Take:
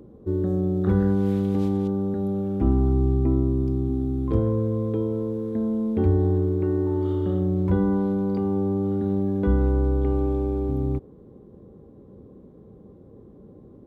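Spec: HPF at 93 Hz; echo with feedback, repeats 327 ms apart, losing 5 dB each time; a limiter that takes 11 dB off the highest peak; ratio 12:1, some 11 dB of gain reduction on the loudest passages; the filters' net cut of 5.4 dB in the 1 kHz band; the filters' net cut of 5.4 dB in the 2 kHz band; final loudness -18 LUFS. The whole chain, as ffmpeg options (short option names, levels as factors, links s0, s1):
-af "highpass=93,equalizer=f=1000:t=o:g=-6.5,equalizer=f=2000:t=o:g=-4.5,acompressor=threshold=0.0355:ratio=12,alimiter=level_in=2.37:limit=0.0631:level=0:latency=1,volume=0.422,aecho=1:1:327|654|981|1308|1635|1962|2289:0.562|0.315|0.176|0.0988|0.0553|0.031|0.0173,volume=8.41"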